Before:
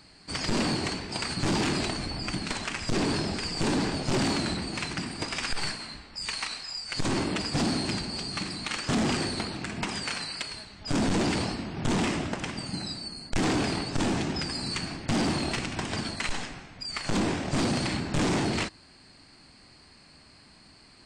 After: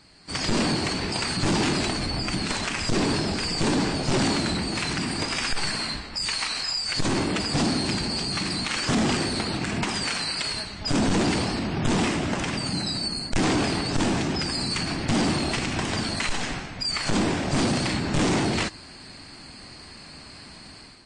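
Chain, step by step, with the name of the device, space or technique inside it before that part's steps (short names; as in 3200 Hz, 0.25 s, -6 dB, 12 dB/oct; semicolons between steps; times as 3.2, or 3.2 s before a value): low-bitrate web radio (AGC gain up to 11 dB; limiter -18.5 dBFS, peak gain reduction 7.5 dB; MP3 40 kbps 24000 Hz)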